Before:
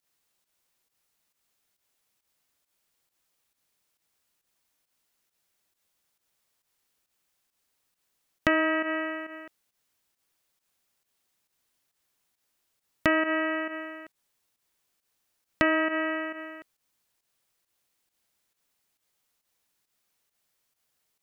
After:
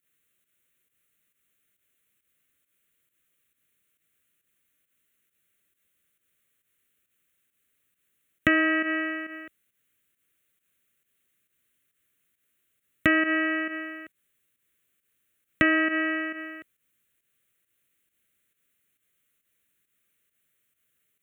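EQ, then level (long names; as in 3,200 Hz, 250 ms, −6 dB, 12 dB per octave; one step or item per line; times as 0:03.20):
high-pass filter 55 Hz
phaser with its sweep stopped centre 2,100 Hz, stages 4
+4.5 dB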